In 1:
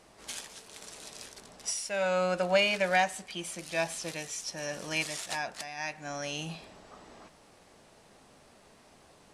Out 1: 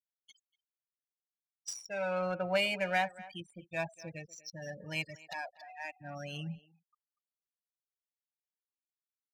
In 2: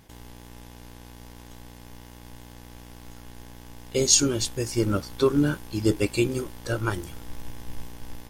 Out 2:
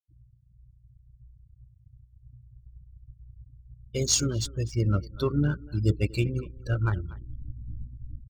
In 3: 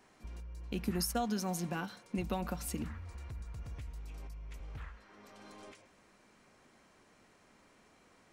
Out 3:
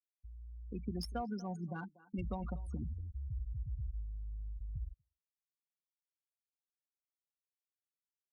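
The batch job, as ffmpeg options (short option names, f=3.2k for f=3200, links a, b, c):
-filter_complex "[0:a]highpass=f=71:p=1,afftfilt=real='re*gte(hypot(re,im),0.0282)':imag='im*gte(hypot(re,im),0.0282)':win_size=1024:overlap=0.75,asplit=2[a][b];[b]adelay=240,highpass=300,lowpass=3.4k,asoftclip=type=hard:threshold=-14dB,volume=-18dB[c];[a][c]amix=inputs=2:normalize=0,asubboost=boost=6:cutoff=130,adynamicsmooth=sensitivity=8:basefreq=3.8k,volume=-4dB"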